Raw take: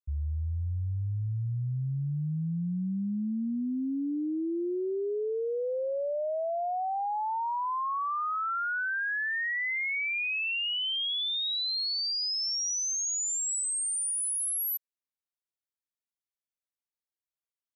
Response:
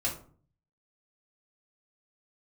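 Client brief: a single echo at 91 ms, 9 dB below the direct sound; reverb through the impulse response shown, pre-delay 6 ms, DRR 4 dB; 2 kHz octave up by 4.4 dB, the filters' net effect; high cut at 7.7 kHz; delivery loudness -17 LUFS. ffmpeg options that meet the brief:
-filter_complex "[0:a]lowpass=7700,equalizer=f=2000:t=o:g=5.5,aecho=1:1:91:0.355,asplit=2[s0][s1];[1:a]atrim=start_sample=2205,adelay=6[s2];[s1][s2]afir=irnorm=-1:irlink=0,volume=0.335[s3];[s0][s3]amix=inputs=2:normalize=0,volume=2.99"

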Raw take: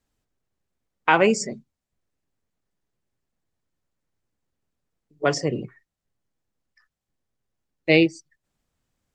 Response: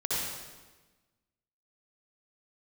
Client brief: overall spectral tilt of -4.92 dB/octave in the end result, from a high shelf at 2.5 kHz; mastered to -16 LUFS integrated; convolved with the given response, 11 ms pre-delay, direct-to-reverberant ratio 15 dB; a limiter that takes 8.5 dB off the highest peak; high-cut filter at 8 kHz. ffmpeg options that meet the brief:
-filter_complex "[0:a]lowpass=8000,highshelf=f=2500:g=-6,alimiter=limit=0.251:level=0:latency=1,asplit=2[s0][s1];[1:a]atrim=start_sample=2205,adelay=11[s2];[s1][s2]afir=irnorm=-1:irlink=0,volume=0.0708[s3];[s0][s3]amix=inputs=2:normalize=0,volume=3.35"

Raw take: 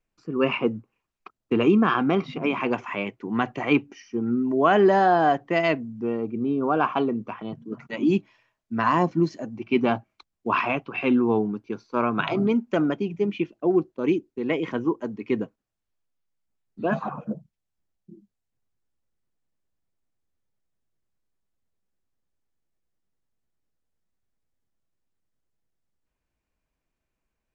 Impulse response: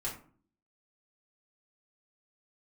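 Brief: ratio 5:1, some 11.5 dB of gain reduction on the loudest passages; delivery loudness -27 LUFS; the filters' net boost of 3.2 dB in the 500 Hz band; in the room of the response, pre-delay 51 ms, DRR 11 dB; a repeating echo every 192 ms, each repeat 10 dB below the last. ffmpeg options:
-filter_complex "[0:a]equalizer=f=500:t=o:g=4.5,acompressor=threshold=0.0562:ratio=5,aecho=1:1:192|384|576|768:0.316|0.101|0.0324|0.0104,asplit=2[s0][s1];[1:a]atrim=start_sample=2205,adelay=51[s2];[s1][s2]afir=irnorm=-1:irlink=0,volume=0.224[s3];[s0][s3]amix=inputs=2:normalize=0,volume=1.33"

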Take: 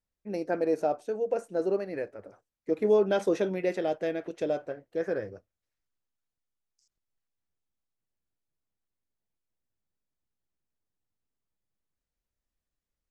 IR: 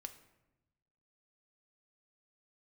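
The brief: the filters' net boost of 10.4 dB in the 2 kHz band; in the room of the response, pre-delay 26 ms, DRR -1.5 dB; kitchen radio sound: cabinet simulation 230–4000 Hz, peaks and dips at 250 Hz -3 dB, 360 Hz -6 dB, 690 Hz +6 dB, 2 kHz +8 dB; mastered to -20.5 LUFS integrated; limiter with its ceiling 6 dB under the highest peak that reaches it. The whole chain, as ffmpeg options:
-filter_complex "[0:a]equalizer=f=2000:t=o:g=8,alimiter=limit=0.1:level=0:latency=1,asplit=2[s0][s1];[1:a]atrim=start_sample=2205,adelay=26[s2];[s1][s2]afir=irnorm=-1:irlink=0,volume=2[s3];[s0][s3]amix=inputs=2:normalize=0,highpass=230,equalizer=f=250:t=q:w=4:g=-3,equalizer=f=360:t=q:w=4:g=-6,equalizer=f=690:t=q:w=4:g=6,equalizer=f=2000:t=q:w=4:g=8,lowpass=f=4000:w=0.5412,lowpass=f=4000:w=1.3066,volume=2.24"

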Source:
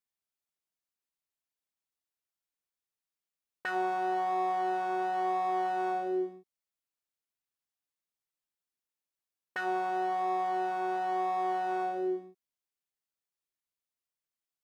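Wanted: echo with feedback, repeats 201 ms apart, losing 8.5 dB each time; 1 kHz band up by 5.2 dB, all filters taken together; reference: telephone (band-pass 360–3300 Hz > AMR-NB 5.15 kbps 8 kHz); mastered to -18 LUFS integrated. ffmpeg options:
-af "highpass=360,lowpass=3300,equalizer=f=1000:t=o:g=9,aecho=1:1:201|402|603|804:0.376|0.143|0.0543|0.0206,volume=3.35" -ar 8000 -c:a libopencore_amrnb -b:a 5150

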